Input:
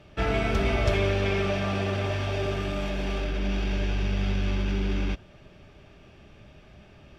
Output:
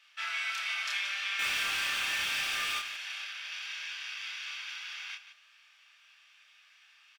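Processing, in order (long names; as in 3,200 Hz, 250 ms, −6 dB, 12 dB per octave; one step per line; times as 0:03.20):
Bessel high-pass filter 2,000 Hz, order 6
0:01.39–0:02.79: power curve on the samples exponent 0.5
loudspeakers that aren't time-aligned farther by 10 metres −2 dB, 61 metres −11 dB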